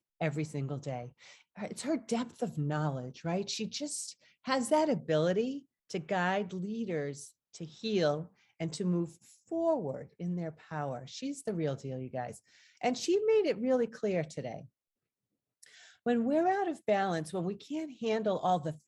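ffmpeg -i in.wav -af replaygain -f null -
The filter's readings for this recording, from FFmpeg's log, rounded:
track_gain = +12.5 dB
track_peak = 0.127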